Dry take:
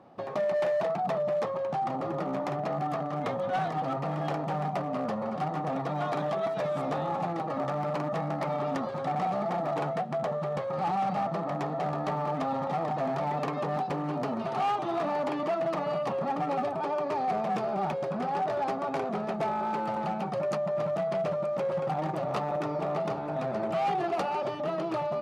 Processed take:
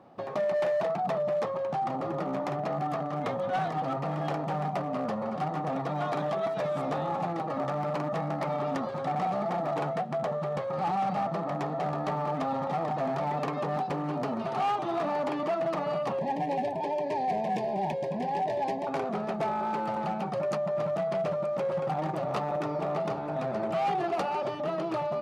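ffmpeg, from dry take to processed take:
-filter_complex "[0:a]asettb=1/sr,asplit=3[a][b][c];[a]atrim=end=16.194[d];[b]atrim=start=16.19:end=18.87,asetpts=PTS-STARTPTS,afade=t=in:d=0.004:c=qsin,afade=t=out:st=2.676:d=0.004:c=qsin,asuperstop=centerf=1300:order=12:qfactor=2.3[e];[c]atrim=start=18.866[f];[d][e]acrossfade=d=0.004:c1=hsin:c2=qsin[g];[g][f]acrossfade=d=0.004:c1=qsin:c2=hsin"

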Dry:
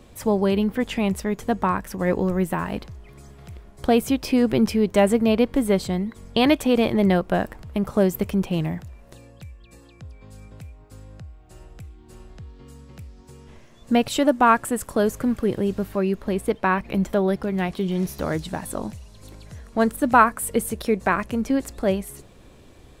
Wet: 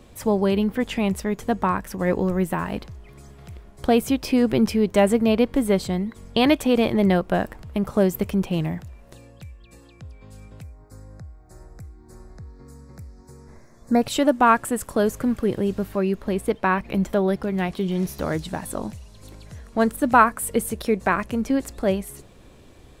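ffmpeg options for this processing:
-filter_complex "[0:a]asettb=1/sr,asplit=3[a][b][c];[a]atrim=end=10.634[d];[b]atrim=start=10.63:end=14.02,asetpts=PTS-STARTPTS,afade=t=in:d=0.004:c=qsin,afade=t=out:st=3.386:d=0.004:c=qsin,asuperstop=centerf=3000:order=4:qfactor=1.3[e];[c]atrim=start=14.016[f];[d][e]acrossfade=d=0.004:c1=hsin:c2=qsin[g];[g][f]acrossfade=d=0.004:c1=qsin:c2=hsin"

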